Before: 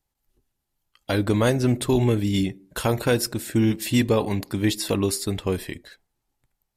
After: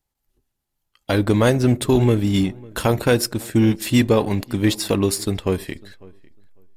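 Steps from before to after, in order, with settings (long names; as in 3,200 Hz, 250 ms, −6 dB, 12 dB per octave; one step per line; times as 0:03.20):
in parallel at −4 dB: slack as between gear wheels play −24.5 dBFS
on the sum: feedback echo with a low-pass in the loop 550 ms, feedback 17%, low-pass 2,300 Hz, level −23.5 dB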